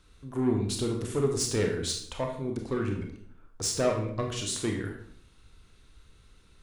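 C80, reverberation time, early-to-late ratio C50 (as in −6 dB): 9.5 dB, 0.65 s, 6.0 dB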